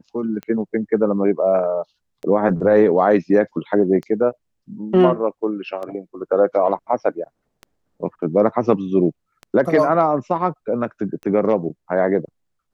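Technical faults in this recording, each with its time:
scratch tick 33 1/3 rpm −20 dBFS

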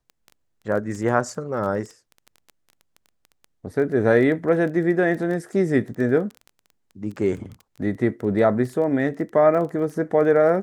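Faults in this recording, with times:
surface crackle 14 per second −30 dBFS

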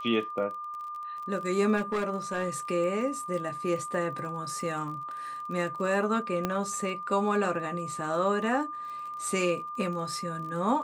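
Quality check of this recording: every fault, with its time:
surface crackle 27 per second −38 dBFS
whistle 1,200 Hz −35 dBFS
0:01.76–0:02.50: clipping −24 dBFS
0:06.45: click −14 dBFS

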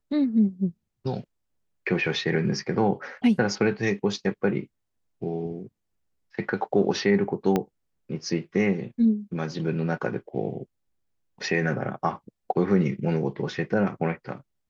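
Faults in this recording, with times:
0:07.56: click −11 dBFS

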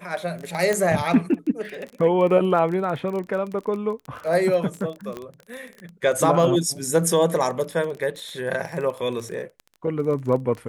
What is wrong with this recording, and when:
surface crackle 24 per second −29 dBFS
0:00.73: click −10 dBFS
0:05.17: click −19 dBFS

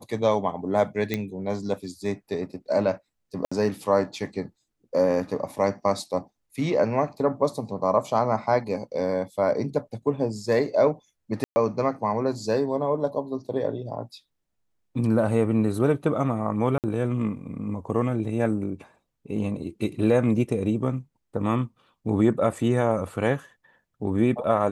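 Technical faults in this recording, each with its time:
0:01.14: click −12 dBFS
0:03.45–0:03.52: drop-out 65 ms
0:11.44–0:11.56: drop-out 120 ms
0:16.78–0:16.84: drop-out 58 ms

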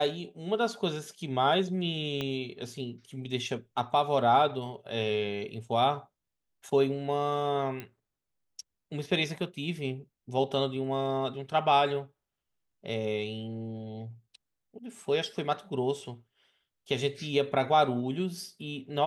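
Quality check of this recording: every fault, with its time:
0:02.21: click −19 dBFS
0:07.80: click −23 dBFS

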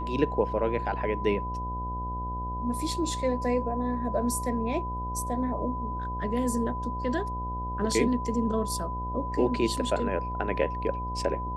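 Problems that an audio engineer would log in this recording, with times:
mains buzz 60 Hz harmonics 15 −35 dBFS
whistle 1,000 Hz −33 dBFS

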